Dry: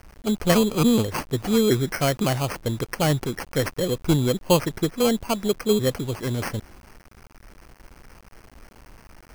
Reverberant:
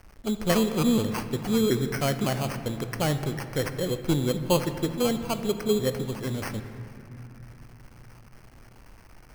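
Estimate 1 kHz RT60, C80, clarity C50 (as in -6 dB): 3.0 s, 10.5 dB, 9.5 dB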